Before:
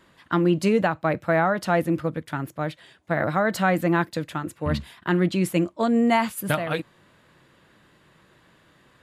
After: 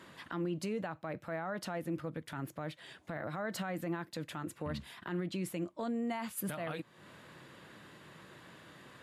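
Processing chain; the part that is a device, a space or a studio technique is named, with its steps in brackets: podcast mastering chain (HPF 92 Hz; compressor 3:1, threshold -40 dBFS, peak gain reduction 17.5 dB; limiter -31.5 dBFS, peak gain reduction 10.5 dB; gain +3.5 dB; MP3 96 kbps 32000 Hz)

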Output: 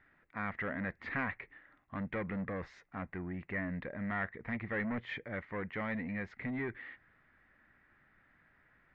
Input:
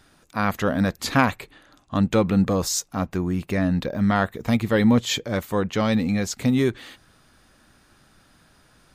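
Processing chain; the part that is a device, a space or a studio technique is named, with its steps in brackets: overdriven synthesiser ladder filter (soft clip -19 dBFS, distortion -11 dB; ladder low-pass 2100 Hz, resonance 75%); gain -2.5 dB

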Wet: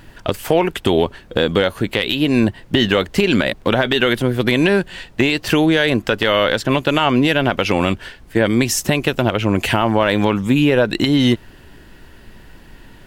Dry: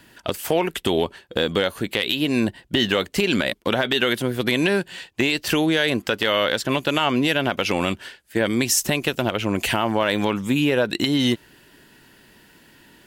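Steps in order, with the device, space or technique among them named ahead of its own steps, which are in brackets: car interior (bell 100 Hz +4 dB 0.97 oct; high shelf 3800 Hz -7.5 dB; brown noise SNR 24 dB); gain +5.5 dB

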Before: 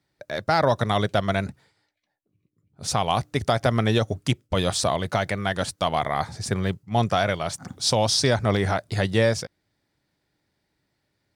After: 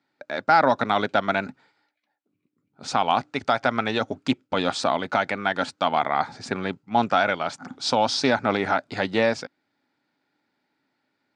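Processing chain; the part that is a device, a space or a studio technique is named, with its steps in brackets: 3.3–4.01 bell 260 Hz -5 dB 1.8 oct; full-range speaker at full volume (Doppler distortion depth 0.13 ms; speaker cabinet 220–6600 Hz, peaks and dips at 260 Hz +10 dB, 850 Hz +7 dB, 1400 Hz +8 dB, 2400 Hz +4 dB, 5800 Hz -5 dB); gain -1.5 dB

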